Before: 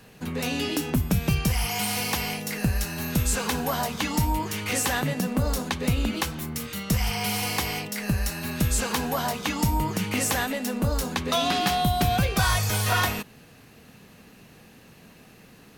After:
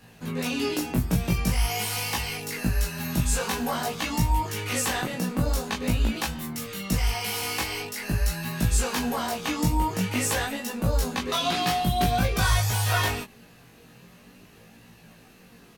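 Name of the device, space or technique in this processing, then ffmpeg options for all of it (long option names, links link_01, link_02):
double-tracked vocal: -filter_complex "[0:a]asplit=2[link_01][link_02];[link_02]adelay=17,volume=-2dB[link_03];[link_01][link_03]amix=inputs=2:normalize=0,flanger=delay=18:depth=5.3:speed=0.47"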